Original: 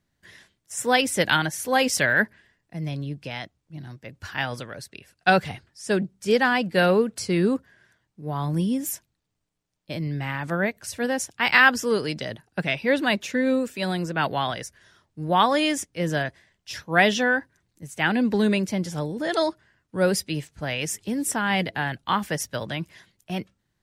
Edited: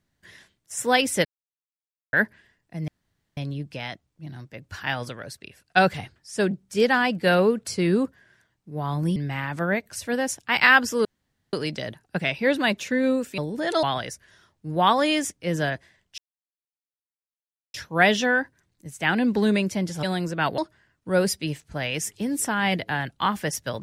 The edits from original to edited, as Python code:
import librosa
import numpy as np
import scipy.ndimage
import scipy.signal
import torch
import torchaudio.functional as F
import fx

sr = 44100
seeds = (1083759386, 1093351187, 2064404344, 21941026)

y = fx.edit(x, sr, fx.silence(start_s=1.25, length_s=0.88),
    fx.insert_room_tone(at_s=2.88, length_s=0.49),
    fx.cut(start_s=8.67, length_s=1.4),
    fx.insert_room_tone(at_s=11.96, length_s=0.48),
    fx.swap(start_s=13.81, length_s=0.55, other_s=19.0, other_length_s=0.45),
    fx.insert_silence(at_s=16.71, length_s=1.56), tone=tone)